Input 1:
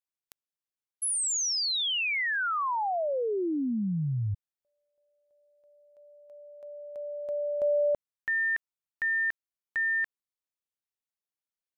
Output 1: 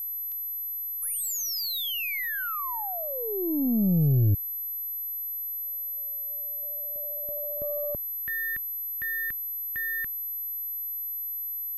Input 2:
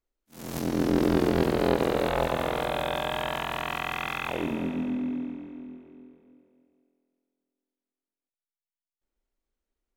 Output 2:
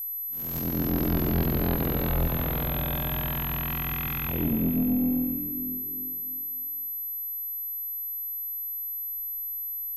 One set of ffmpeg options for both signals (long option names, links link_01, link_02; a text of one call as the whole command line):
ffmpeg -i in.wav -af "asubboost=boost=9.5:cutoff=210,aeval=exprs='val(0)+0.0447*sin(2*PI*12000*n/s)':channel_layout=same,aeval=exprs='(tanh(5.62*val(0)+0.25)-tanh(0.25))/5.62':channel_layout=same,volume=-3dB" out.wav